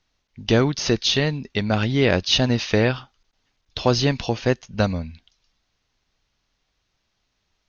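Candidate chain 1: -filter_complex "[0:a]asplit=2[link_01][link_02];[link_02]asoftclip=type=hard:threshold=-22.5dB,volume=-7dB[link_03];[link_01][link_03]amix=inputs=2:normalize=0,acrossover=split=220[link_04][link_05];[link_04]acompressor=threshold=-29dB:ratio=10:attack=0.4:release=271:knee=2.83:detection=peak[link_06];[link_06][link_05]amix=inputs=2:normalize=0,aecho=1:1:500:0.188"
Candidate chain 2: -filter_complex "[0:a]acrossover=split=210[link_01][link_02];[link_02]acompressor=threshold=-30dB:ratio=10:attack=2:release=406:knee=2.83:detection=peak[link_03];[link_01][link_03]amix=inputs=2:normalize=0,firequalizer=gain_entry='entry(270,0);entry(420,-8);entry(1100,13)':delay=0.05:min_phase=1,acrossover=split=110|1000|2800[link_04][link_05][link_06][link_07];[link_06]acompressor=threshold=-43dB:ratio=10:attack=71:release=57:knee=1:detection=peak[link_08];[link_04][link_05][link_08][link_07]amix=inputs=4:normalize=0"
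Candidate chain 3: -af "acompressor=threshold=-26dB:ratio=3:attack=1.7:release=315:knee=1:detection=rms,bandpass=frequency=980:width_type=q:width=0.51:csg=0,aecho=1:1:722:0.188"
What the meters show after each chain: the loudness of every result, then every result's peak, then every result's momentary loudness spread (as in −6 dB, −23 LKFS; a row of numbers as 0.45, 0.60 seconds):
−21.0, −25.5, −36.5 LKFS; −3.5, −4.5, −17.5 dBFS; 17, 9, 16 LU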